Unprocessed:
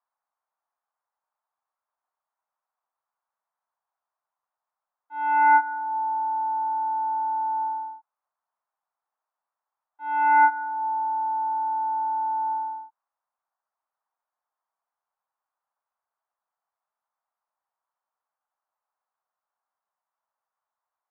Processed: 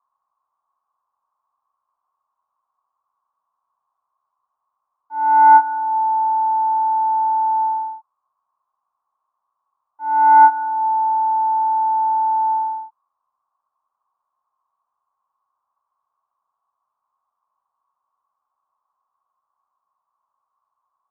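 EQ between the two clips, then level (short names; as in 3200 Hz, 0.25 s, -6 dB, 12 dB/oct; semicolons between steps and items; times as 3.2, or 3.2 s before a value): synth low-pass 1100 Hz, resonance Q 12; low shelf 410 Hz +8.5 dB; -2.0 dB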